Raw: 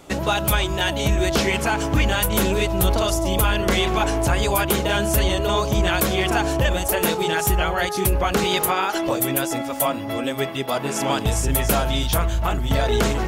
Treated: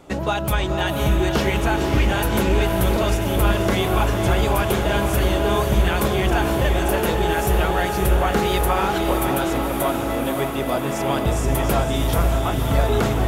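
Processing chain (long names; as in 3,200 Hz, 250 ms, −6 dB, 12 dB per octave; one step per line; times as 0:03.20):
high-shelf EQ 2,400 Hz −8 dB
on a send: feedback delay with all-pass diffusion 529 ms, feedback 69%, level −5 dB
0:06.38–0:07.16: on the sum: surface crackle 150 per second → 42 per second −42 dBFS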